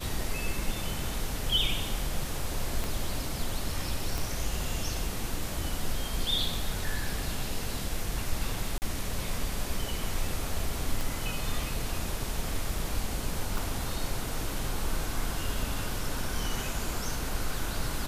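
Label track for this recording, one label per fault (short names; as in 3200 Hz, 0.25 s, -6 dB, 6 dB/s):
2.840000	2.840000	pop
4.180000	4.180000	pop
8.780000	8.820000	gap 39 ms
11.010000	11.010000	pop
13.580000	13.580000	pop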